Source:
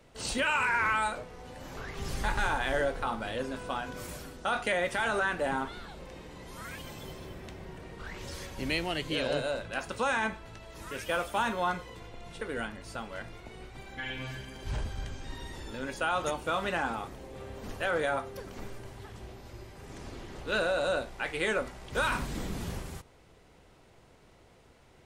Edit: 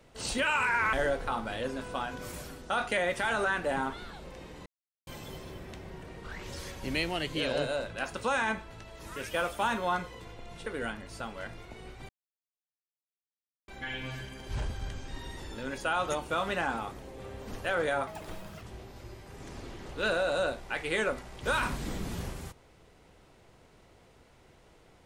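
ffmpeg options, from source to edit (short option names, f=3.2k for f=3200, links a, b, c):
-filter_complex "[0:a]asplit=7[a][b][c][d][e][f][g];[a]atrim=end=0.932[h];[b]atrim=start=2.678:end=6.41,asetpts=PTS-STARTPTS,afade=t=out:st=3.728:d=0.004:c=hsin[i];[c]atrim=start=6.41:end=6.82,asetpts=PTS-STARTPTS,volume=0[j];[d]atrim=start=6.82:end=13.84,asetpts=PTS-STARTPTS,afade=t=in:d=0.004:c=hsin,afade=t=out:st=7.016:d=0.004:c=hsin,apad=pad_dur=1.59[k];[e]atrim=start=13.84:end=18.234,asetpts=PTS-STARTPTS,afade=t=in:d=0.004:c=hsin[l];[f]atrim=start=18.23:end=19.11,asetpts=PTS-STARTPTS,asetrate=71001,aresample=44100,atrim=end_sample=24104,asetpts=PTS-STARTPTS[m];[g]atrim=start=19.106[n];[i][j][k][l]concat=n=4:v=0:a=1[o];[h][o]acrossfade=d=0.004:c1=hsin:c2=hsin[p];[p][m]acrossfade=d=0.004:c1=hsin:c2=hsin[q];[q][n]acrossfade=d=0.004:c1=hsin:c2=hsin"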